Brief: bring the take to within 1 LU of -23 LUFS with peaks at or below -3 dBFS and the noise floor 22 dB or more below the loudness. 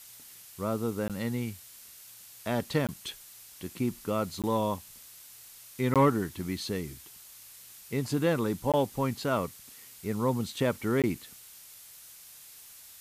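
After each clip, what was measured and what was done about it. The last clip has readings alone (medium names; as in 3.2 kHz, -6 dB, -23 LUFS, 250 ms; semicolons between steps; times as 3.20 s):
dropouts 6; longest dropout 17 ms; noise floor -51 dBFS; noise floor target -53 dBFS; loudness -30.5 LUFS; peak level -13.5 dBFS; loudness target -23.0 LUFS
-> interpolate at 1.08/2.87/4.42/5.94/8.72/11.02 s, 17 ms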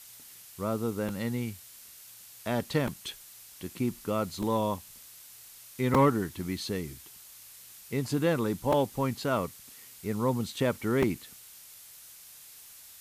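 dropouts 0; noise floor -51 dBFS; noise floor target -53 dBFS
-> noise print and reduce 6 dB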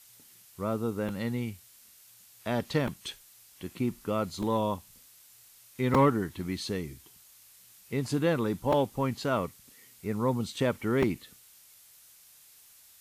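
noise floor -57 dBFS; loudness -30.5 LUFS; peak level -12.0 dBFS; loudness target -23.0 LUFS
-> trim +7.5 dB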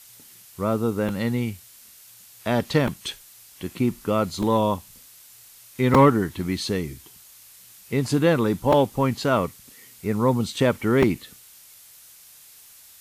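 loudness -23.0 LUFS; peak level -4.5 dBFS; noise floor -49 dBFS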